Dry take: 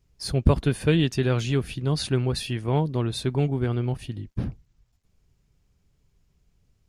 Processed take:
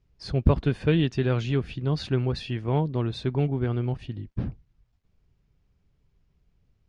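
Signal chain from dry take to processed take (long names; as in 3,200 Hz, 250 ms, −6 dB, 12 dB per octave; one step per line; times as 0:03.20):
high-frequency loss of the air 150 metres
level −1 dB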